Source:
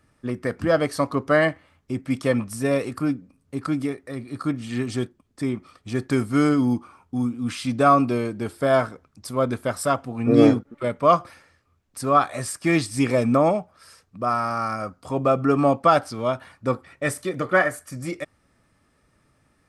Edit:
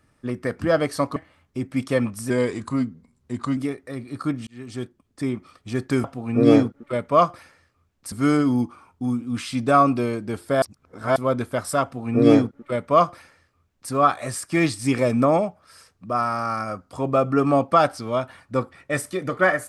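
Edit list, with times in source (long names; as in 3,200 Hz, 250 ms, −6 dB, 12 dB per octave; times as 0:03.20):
0:01.16–0:01.50: remove
0:02.64–0:03.77: play speed 89%
0:04.67–0:05.51: fade in equal-power
0:08.74–0:09.28: reverse
0:09.95–0:12.03: duplicate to 0:06.24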